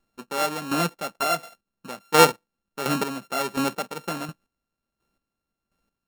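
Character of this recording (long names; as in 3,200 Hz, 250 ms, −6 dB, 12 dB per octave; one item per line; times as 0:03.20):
a buzz of ramps at a fixed pitch in blocks of 32 samples
chopped level 1.4 Hz, depth 65%, duty 25%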